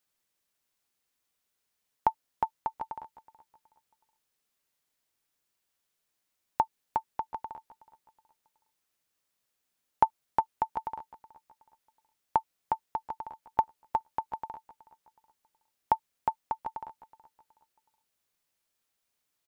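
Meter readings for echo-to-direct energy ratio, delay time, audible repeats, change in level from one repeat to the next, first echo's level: -18.5 dB, 371 ms, 2, -9.0 dB, -19.0 dB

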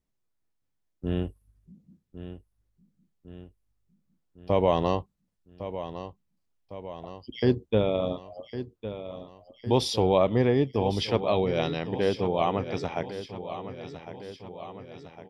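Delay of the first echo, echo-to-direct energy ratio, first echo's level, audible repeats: 1106 ms, -10.5 dB, -12.0 dB, 4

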